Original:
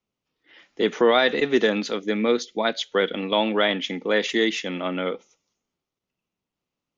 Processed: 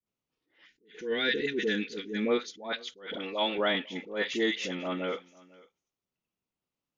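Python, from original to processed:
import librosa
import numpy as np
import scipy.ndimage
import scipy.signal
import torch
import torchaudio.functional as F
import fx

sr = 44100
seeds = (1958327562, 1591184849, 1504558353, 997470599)

p1 = fx.spec_box(x, sr, start_s=0.62, length_s=1.52, low_hz=500.0, high_hz=1400.0, gain_db=-17)
p2 = fx.bass_treble(p1, sr, bass_db=-12, treble_db=7, at=(3.15, 3.58))
p3 = fx.dispersion(p2, sr, late='highs', ms=64.0, hz=790.0)
p4 = p3 + fx.echo_single(p3, sr, ms=499, db=-23.5, dry=0)
p5 = fx.attack_slew(p4, sr, db_per_s=140.0)
y = F.gain(torch.from_numpy(p5), -6.0).numpy()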